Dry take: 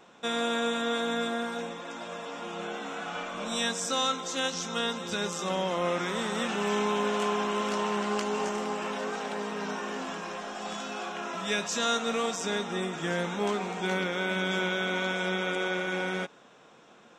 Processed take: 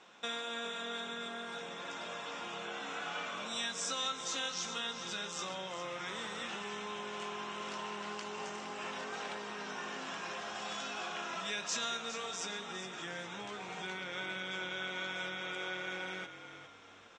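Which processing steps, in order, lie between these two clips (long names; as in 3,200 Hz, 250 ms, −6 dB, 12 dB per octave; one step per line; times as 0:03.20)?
RIAA equalisation playback
downward compressor, threshold −31 dBFS, peak gain reduction 10.5 dB
meter weighting curve ITU-R 468
on a send: echo with shifted repeats 408 ms, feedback 37%, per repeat −42 Hz, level −11 dB
on the sum: flanger 0.85 Hz, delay 9.2 ms, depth 2.1 ms, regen −72%
level +1 dB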